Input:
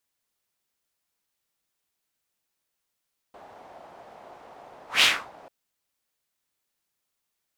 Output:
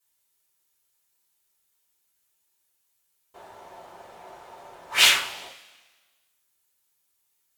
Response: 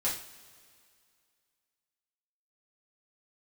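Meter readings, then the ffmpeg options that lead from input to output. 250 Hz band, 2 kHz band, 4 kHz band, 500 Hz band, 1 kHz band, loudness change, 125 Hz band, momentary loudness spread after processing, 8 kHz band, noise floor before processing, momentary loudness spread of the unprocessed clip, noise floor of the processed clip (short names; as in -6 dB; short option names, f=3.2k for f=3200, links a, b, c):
-1.5 dB, +2.5 dB, +4.0 dB, +1.0 dB, +2.0 dB, +3.0 dB, n/a, 14 LU, +7.5 dB, -81 dBFS, 9 LU, -73 dBFS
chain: -filter_complex "[0:a]aemphasis=mode=production:type=cd[a];[1:a]atrim=start_sample=2205,asetrate=74970,aresample=44100[b];[a][b]afir=irnorm=-1:irlink=0"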